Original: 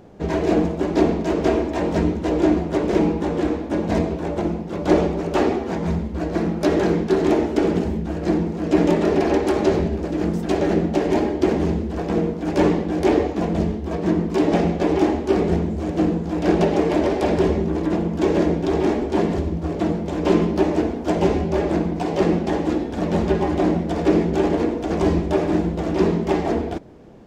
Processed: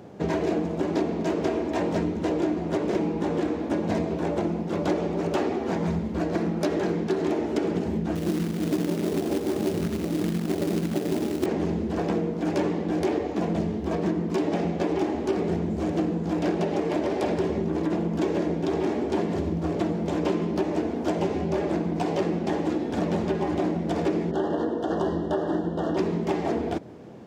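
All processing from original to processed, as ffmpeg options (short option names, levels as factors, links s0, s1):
-filter_complex "[0:a]asettb=1/sr,asplit=3[s0][s1][s2];[s0]atrim=end=8.154[s3];[s1]atrim=start=8.15:end=11.46,asetpts=PTS-STARTPTS,afade=t=in:d=0.004:c=qsin,afade=t=out:st=3.306:d=0.004:c=qsin,bandpass=f=160:t=q:w=0.6,acrusher=bits=3:mode=log:mix=0:aa=0.000001[s4];[s2]atrim=start=11.456[s5];[s3][s4]acrossfade=d=0.004:c1=hsin:c2=qsin[s6];[s6][s5]acrossfade=d=0.004:c1=qsin:c2=hsin,asettb=1/sr,asplit=3[s7][s8][s9];[s7]atrim=end=24.314[s10];[s8]atrim=start=24.31:end=25.97,asetpts=PTS-STARTPTS,afade=t=in:d=0.004:c=qsin,afade=t=out:st=1.656:d=0.004:c=qsin,asuperstop=centerf=2300:order=20:qfactor=2.5,bass=f=250:g=-5,treble=f=4000:g=-10,bandreject=f=50:t=h:w=6,bandreject=f=100:t=h:w=6,bandreject=f=150:t=h:w=6,bandreject=f=200:t=h:w=6,bandreject=f=250:t=h:w=6,bandreject=f=300:t=h:w=6,bandreject=f=350:t=h:w=6,bandreject=f=400:t=h:w=6,bandreject=f=450:t=h:w=6,bandreject=f=500:t=h:w=6[s11];[s9]atrim=start=25.966[s12];[s10][s11]acrossfade=d=0.004:c1=hsin:c2=qsin[s13];[s13][s12]acrossfade=d=0.004:c1=qsin:c2=hsin,highpass=f=88:w=0.5412,highpass=f=88:w=1.3066,acompressor=threshold=0.0631:ratio=6,volume=1.19"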